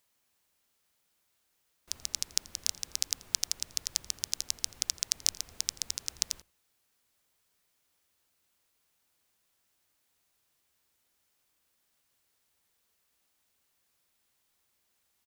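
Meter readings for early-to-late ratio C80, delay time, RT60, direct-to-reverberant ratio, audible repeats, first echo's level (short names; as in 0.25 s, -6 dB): none, 84 ms, none, none, 1, -23.0 dB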